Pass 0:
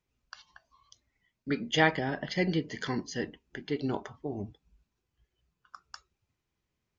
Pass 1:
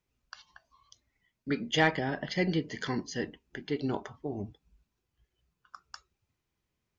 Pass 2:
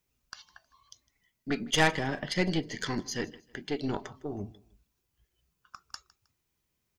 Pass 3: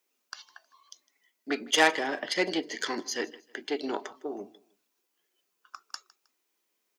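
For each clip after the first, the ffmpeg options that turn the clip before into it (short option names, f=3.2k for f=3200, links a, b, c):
-af "asoftclip=type=tanh:threshold=-11.5dB"
-af "aeval=exprs='0.237*(cos(1*acos(clip(val(0)/0.237,-1,1)))-cos(1*PI/2))+0.0422*(cos(4*acos(clip(val(0)/0.237,-1,1)))-cos(4*PI/2))':c=same,crystalizer=i=1.5:c=0,aecho=1:1:157|314:0.0794|0.0262"
-af "highpass=f=300:w=0.5412,highpass=f=300:w=1.3066,volume=3dB"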